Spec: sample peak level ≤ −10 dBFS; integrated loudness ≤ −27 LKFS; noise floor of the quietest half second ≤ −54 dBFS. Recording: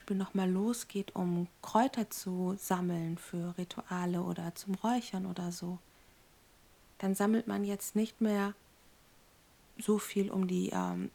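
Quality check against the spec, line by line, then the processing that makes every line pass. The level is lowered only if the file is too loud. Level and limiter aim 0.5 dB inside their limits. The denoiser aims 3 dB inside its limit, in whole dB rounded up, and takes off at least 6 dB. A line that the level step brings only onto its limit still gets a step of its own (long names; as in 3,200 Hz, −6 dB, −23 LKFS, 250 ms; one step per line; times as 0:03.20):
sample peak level −14.5 dBFS: in spec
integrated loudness −34.5 LKFS: in spec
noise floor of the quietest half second −64 dBFS: in spec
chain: no processing needed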